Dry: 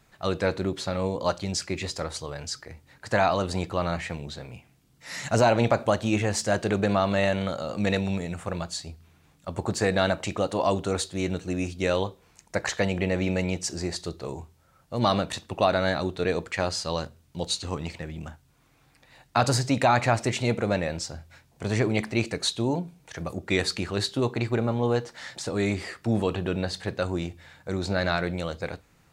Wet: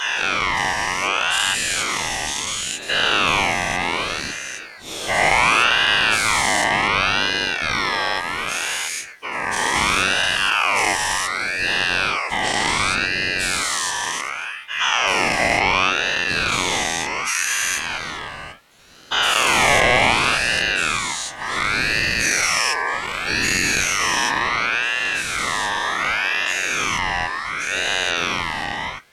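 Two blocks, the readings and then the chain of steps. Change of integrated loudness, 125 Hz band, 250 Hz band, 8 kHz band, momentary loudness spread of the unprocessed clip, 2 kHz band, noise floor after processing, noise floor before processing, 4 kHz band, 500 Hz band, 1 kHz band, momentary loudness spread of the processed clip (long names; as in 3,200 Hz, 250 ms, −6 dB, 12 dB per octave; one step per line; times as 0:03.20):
+8.5 dB, −5.5 dB, −4.0 dB, +13.0 dB, 13 LU, +16.0 dB, −34 dBFS, −62 dBFS, +13.5 dB, −2.0 dB, +9.0 dB, 9 LU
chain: every bin's largest magnitude spread in time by 480 ms
high-pass filter 170 Hz
in parallel at 0 dB: downward compressor, threshold −25 dBFS, peak gain reduction 15 dB
on the sum: frequency shifter +32 Hz
ring modulator whose carrier an LFO sweeps 1,800 Hz, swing 25%, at 0.68 Hz
level −1 dB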